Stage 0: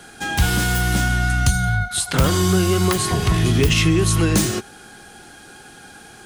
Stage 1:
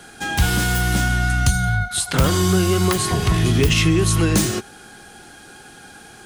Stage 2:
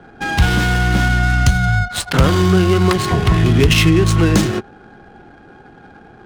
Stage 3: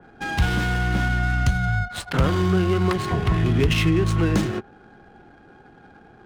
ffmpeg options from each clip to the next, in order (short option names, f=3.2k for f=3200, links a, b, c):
-af anull
-af "adynamicsmooth=sensitivity=3:basefreq=870,volume=4.5dB"
-af "adynamicequalizer=threshold=0.0158:dfrequency=3400:dqfactor=0.7:tfrequency=3400:tqfactor=0.7:attack=5:release=100:ratio=0.375:range=3:mode=cutabove:tftype=highshelf,volume=-7dB"